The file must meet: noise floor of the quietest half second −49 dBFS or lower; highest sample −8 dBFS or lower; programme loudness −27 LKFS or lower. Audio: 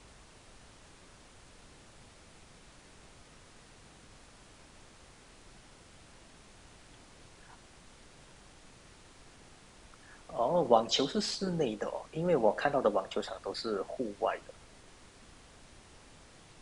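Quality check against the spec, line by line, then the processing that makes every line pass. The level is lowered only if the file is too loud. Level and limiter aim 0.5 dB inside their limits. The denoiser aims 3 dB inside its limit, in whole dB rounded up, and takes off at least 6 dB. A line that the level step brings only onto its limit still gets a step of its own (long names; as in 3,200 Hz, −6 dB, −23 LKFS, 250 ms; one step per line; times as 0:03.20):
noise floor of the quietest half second −56 dBFS: in spec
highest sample −9.5 dBFS: in spec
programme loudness −32.0 LKFS: in spec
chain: no processing needed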